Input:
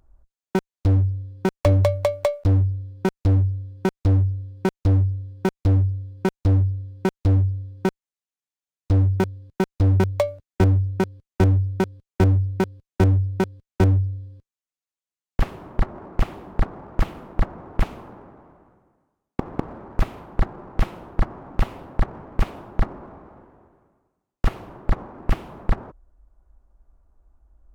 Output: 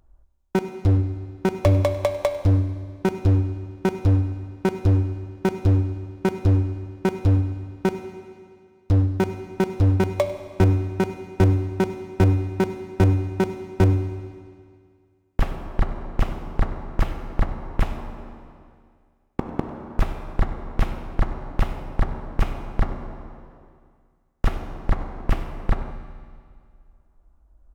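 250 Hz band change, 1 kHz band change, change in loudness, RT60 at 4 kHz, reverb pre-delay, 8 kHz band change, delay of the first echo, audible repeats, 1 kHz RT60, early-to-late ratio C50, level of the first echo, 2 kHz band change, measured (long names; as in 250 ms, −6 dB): +1.0 dB, +0.5 dB, −0.5 dB, 1.9 s, 13 ms, can't be measured, 98 ms, 1, 2.1 s, 9.0 dB, −18.0 dB, +0.5 dB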